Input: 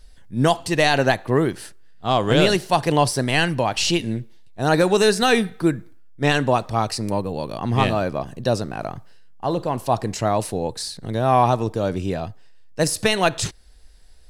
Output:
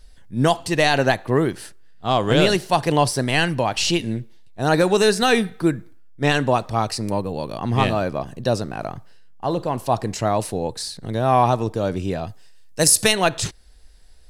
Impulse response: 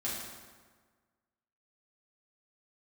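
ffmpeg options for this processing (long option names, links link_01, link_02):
-filter_complex "[0:a]asplit=3[link_01][link_02][link_03];[link_01]afade=type=out:start_time=12.27:duration=0.02[link_04];[link_02]equalizer=frequency=11000:width_type=o:width=2.1:gain=12,afade=type=in:start_time=12.27:duration=0.02,afade=type=out:start_time=13.11:duration=0.02[link_05];[link_03]afade=type=in:start_time=13.11:duration=0.02[link_06];[link_04][link_05][link_06]amix=inputs=3:normalize=0"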